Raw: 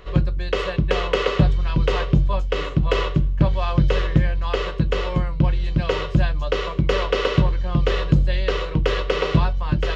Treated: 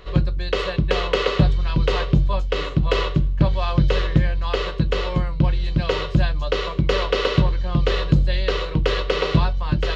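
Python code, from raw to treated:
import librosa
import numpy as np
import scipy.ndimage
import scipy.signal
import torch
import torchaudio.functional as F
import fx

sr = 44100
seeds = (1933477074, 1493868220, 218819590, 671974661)

y = fx.peak_eq(x, sr, hz=4100.0, db=5.5, octaves=0.47)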